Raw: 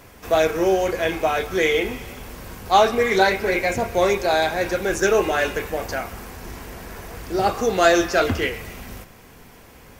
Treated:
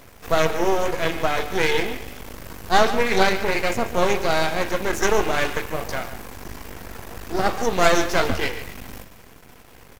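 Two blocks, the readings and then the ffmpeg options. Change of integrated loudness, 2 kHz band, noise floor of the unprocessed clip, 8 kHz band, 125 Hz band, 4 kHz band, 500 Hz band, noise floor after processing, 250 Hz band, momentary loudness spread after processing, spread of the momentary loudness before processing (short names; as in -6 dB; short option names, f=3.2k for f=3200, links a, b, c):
-1.5 dB, -1.0 dB, -47 dBFS, +0.5 dB, +1.0 dB, +0.5 dB, -3.0 dB, -47 dBFS, -1.5 dB, 19 LU, 19 LU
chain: -af "aeval=exprs='max(val(0),0)':c=same,aecho=1:1:144:0.224,volume=2.5dB"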